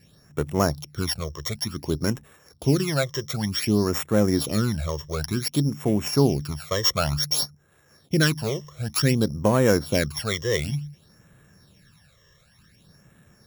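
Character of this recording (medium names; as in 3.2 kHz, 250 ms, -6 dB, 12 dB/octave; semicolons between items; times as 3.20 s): a buzz of ramps at a fixed pitch in blocks of 8 samples; phasing stages 12, 0.55 Hz, lowest notch 240–4900 Hz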